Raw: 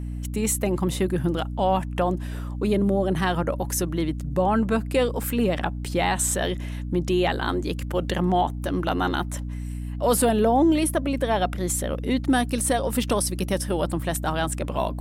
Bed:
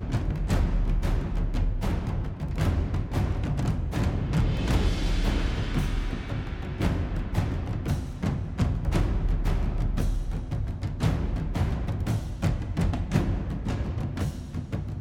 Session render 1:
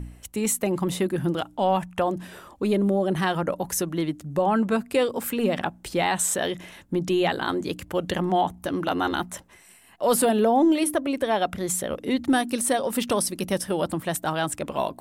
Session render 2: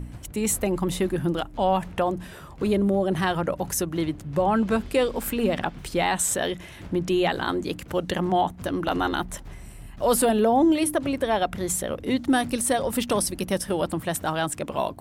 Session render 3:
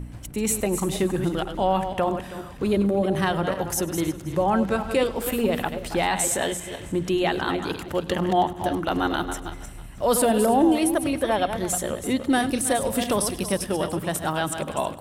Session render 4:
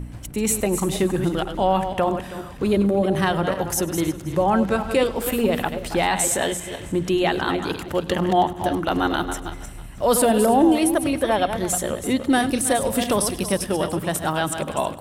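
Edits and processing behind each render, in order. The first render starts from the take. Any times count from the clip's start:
de-hum 60 Hz, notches 5
add bed -15.5 dB
regenerating reverse delay 0.161 s, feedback 42%, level -8 dB; thinning echo 0.101 s, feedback 62%, level -20 dB
gain +2.5 dB

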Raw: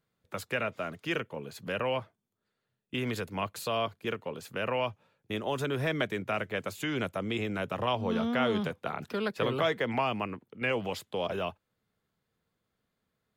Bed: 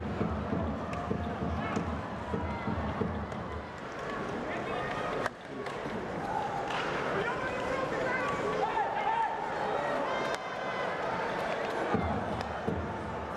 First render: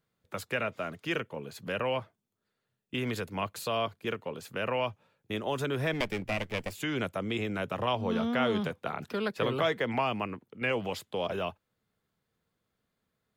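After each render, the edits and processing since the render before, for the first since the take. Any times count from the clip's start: 5.93–6.73 minimum comb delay 0.39 ms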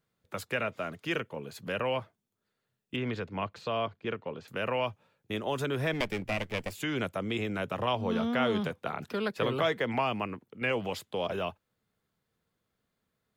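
2.96–4.48 air absorption 180 m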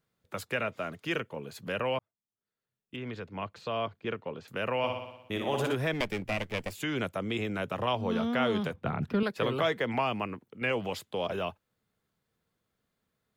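1.99–4 fade in; 4.78–5.75 flutter echo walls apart 10.2 m, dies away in 0.84 s; 8.74–9.23 tone controls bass +14 dB, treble -11 dB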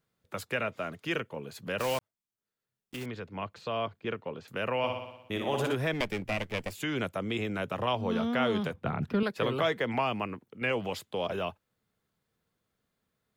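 1.78–3.07 block floating point 3-bit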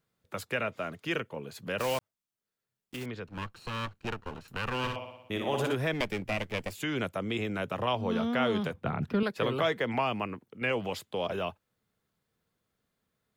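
3.27–4.96 minimum comb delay 0.72 ms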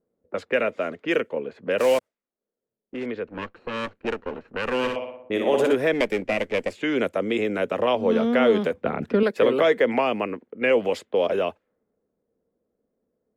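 low-pass opened by the level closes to 600 Hz, open at -29.5 dBFS; graphic EQ 125/250/500/2000/8000 Hz -9/+8/+12/+7/+4 dB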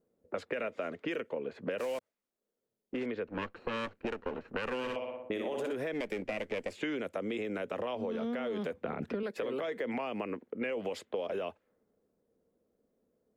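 limiter -17.5 dBFS, peak gain reduction 9.5 dB; compressor 10:1, threshold -32 dBFS, peak gain reduction 11.5 dB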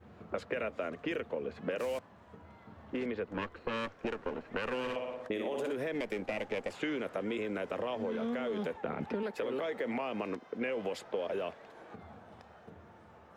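add bed -20 dB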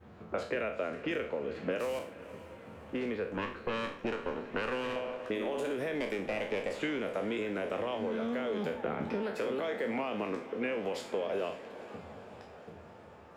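spectral trails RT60 0.45 s; diffused feedback echo 0.488 s, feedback 63%, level -15.5 dB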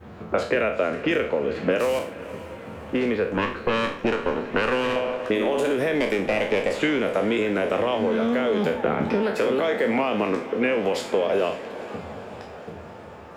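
gain +11.5 dB

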